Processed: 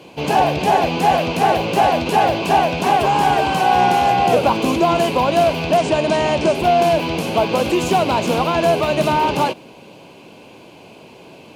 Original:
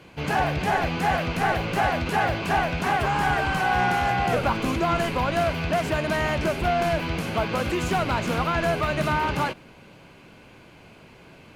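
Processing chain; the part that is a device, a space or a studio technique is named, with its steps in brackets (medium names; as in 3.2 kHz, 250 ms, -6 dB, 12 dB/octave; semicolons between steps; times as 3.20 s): 5.77–6.55 s: steep low-pass 9.3 kHz 48 dB/octave; high-order bell 1.6 kHz -9.5 dB 1 oct; filter by subtraction (in parallel: low-pass 380 Hz 12 dB/octave + polarity flip); on the sum: trim +8 dB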